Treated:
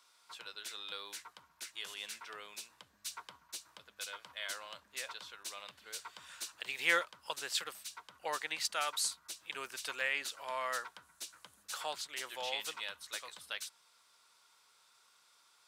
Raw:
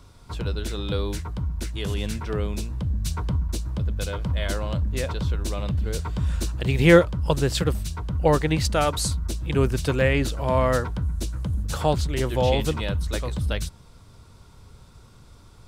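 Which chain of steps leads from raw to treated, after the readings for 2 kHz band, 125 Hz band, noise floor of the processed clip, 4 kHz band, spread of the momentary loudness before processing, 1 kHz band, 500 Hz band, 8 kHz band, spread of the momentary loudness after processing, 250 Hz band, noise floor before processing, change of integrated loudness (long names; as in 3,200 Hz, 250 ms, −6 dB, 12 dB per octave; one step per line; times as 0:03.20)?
−7.5 dB, below −40 dB, −69 dBFS, −6.5 dB, 8 LU, −12.5 dB, −22.5 dB, −6.5 dB, 14 LU, −33.0 dB, −50 dBFS, −15.0 dB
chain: high-pass filter 1,300 Hz 12 dB per octave
level −6.5 dB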